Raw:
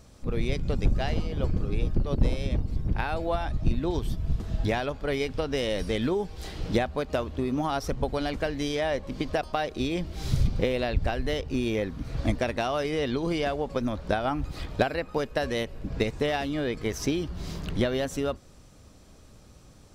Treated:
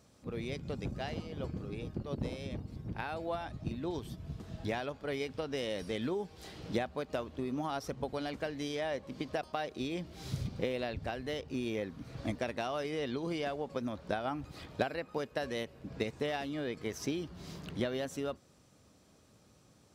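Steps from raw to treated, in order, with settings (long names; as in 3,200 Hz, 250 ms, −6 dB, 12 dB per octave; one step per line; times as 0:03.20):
high-pass filter 110 Hz 12 dB per octave
level −8 dB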